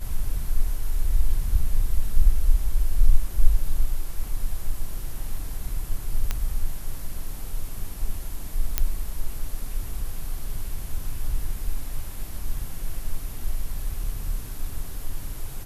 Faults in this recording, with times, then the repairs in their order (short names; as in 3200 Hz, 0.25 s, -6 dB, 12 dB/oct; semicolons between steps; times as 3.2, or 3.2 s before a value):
6.31 pop -10 dBFS
8.78 pop -5 dBFS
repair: de-click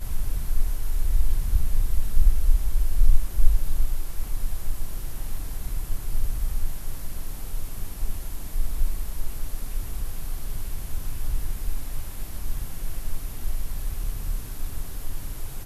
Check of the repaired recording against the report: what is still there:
none